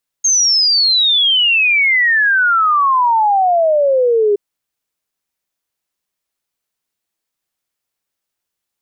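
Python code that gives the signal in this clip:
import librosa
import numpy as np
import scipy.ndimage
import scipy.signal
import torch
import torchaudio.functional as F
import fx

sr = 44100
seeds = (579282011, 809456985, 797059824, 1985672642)

y = fx.ess(sr, length_s=4.12, from_hz=6500.0, to_hz=400.0, level_db=-9.5)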